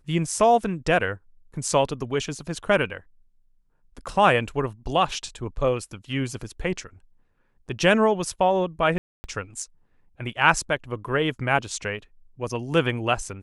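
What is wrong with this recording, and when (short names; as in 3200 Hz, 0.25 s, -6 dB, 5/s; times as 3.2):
8.98–9.24 gap 0.26 s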